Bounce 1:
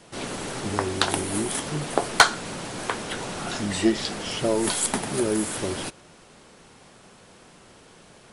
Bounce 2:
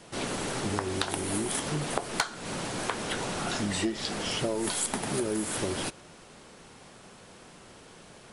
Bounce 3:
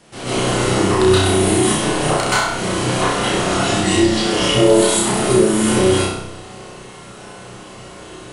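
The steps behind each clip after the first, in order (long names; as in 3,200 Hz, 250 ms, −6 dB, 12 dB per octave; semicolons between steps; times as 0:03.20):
downward compressor 8 to 1, threshold −26 dBFS, peak gain reduction 17 dB
flutter between parallel walls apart 5.5 metres, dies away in 0.64 s; convolution reverb RT60 0.65 s, pre-delay 119 ms, DRR −11 dB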